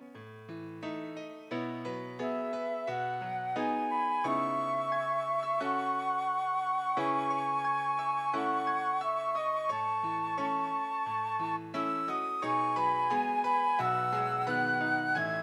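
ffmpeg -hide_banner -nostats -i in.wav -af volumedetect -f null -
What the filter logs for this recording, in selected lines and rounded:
mean_volume: -31.9 dB
max_volume: -19.3 dB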